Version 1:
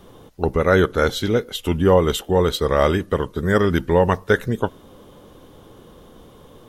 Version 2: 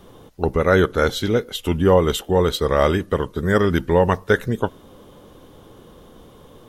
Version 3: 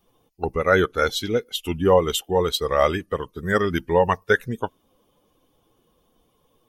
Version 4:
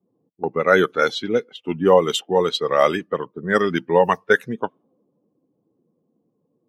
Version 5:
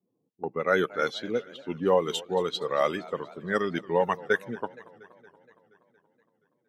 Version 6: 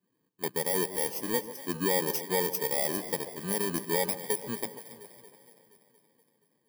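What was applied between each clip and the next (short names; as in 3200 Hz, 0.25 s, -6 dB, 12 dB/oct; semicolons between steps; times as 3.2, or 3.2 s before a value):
nothing audible
per-bin expansion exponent 1.5; low shelf 330 Hz -9.5 dB; gain +3 dB
low-pass opened by the level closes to 330 Hz, open at -15.5 dBFS; HPF 150 Hz 24 dB/oct; gain +2.5 dB
warbling echo 0.235 s, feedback 65%, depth 212 cents, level -20.5 dB; gain -8.5 dB
FFT order left unsorted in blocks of 32 samples; limiter -18.5 dBFS, peak gain reduction 8.5 dB; echo with dull and thin repeats by turns 0.138 s, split 1100 Hz, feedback 67%, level -12.5 dB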